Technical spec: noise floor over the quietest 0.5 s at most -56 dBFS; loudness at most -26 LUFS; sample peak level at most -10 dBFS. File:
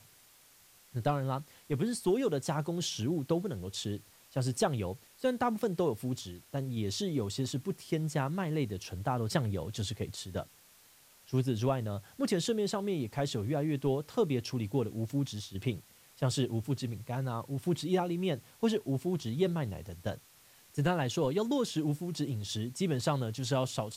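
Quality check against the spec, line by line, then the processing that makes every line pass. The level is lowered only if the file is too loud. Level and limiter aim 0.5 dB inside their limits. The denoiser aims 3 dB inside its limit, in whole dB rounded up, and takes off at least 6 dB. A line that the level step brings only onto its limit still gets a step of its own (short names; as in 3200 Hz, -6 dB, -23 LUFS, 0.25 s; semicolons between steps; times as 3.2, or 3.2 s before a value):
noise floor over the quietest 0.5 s -61 dBFS: OK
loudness -33.5 LUFS: OK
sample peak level -16.5 dBFS: OK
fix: none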